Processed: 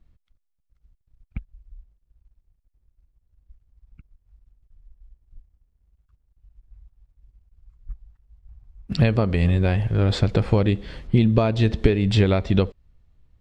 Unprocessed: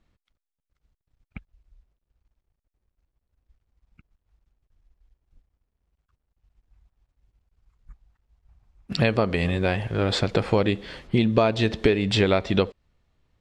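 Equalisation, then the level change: bass shelf 86 Hz +8.5 dB; bass shelf 250 Hz +9 dB; -3.5 dB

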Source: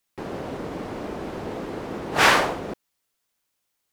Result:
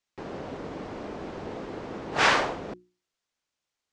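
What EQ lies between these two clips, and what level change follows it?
low-pass 7.2 kHz 24 dB/octave; hum notches 60/120/180/240/300/360 Hz; -4.5 dB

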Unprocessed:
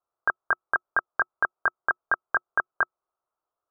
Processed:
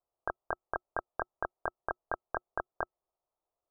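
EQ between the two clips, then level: four-pole ladder low-pass 1 kHz, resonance 25%; bass shelf 70 Hz +11 dB; +4.0 dB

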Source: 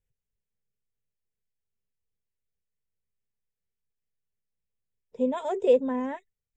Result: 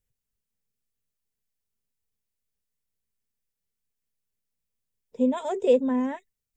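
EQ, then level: peaking EQ 240 Hz +6.5 dB 0.35 oct; treble shelf 4.4 kHz +7.5 dB; 0.0 dB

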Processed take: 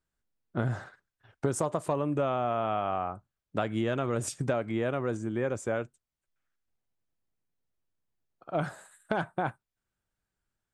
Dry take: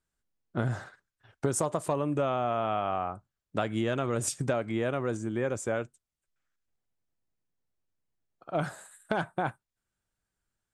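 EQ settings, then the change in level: treble shelf 4.4 kHz -6 dB; 0.0 dB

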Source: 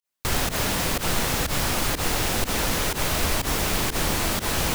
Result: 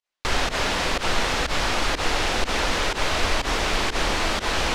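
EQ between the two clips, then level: low-pass 4.8 kHz 12 dB/octave; peaking EQ 130 Hz -11 dB 2 oct; +4.0 dB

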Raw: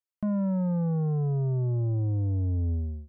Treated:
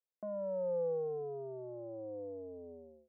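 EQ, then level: ladder band-pass 550 Hz, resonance 70%; +5.0 dB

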